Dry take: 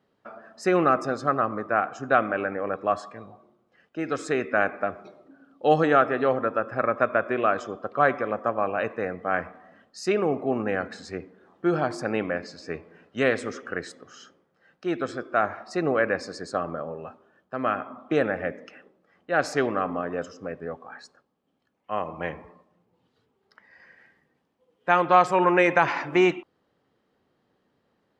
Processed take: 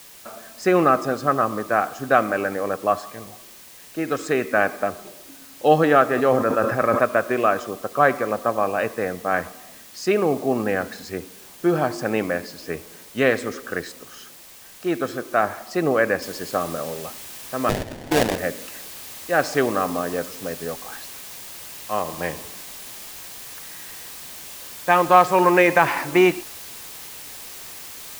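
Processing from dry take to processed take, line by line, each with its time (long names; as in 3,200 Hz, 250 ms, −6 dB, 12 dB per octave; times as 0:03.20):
0:06.11–0:07.04: level that may fall only so fast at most 50 dB per second
0:16.22: noise floor change −49 dB −42 dB
0:17.69–0:18.38: sample-rate reduction 1,200 Hz, jitter 20%
whole clip: notch filter 1,400 Hz, Q 19; level +4 dB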